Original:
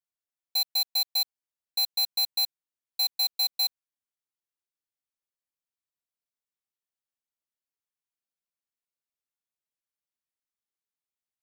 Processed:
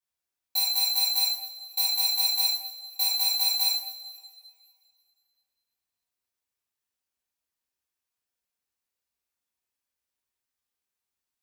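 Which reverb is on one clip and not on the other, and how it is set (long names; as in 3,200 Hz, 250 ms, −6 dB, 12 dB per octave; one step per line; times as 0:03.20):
coupled-rooms reverb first 0.58 s, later 2.3 s, from −18 dB, DRR −6 dB
level −1 dB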